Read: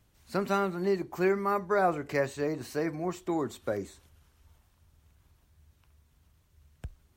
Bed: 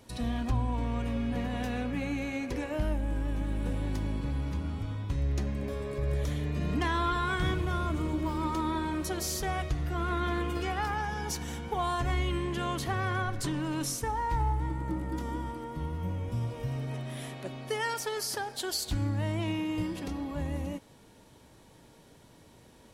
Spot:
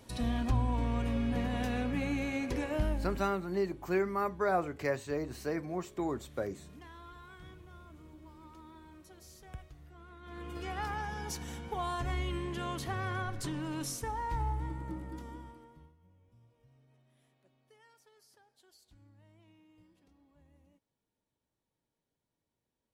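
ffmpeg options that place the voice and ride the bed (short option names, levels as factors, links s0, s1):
-filter_complex "[0:a]adelay=2700,volume=0.631[s0];[1:a]volume=7.08,afade=t=out:st=2.81:d=0.52:silence=0.0794328,afade=t=in:st=10.22:d=0.61:silence=0.133352,afade=t=out:st=14.6:d=1.35:silence=0.0473151[s1];[s0][s1]amix=inputs=2:normalize=0"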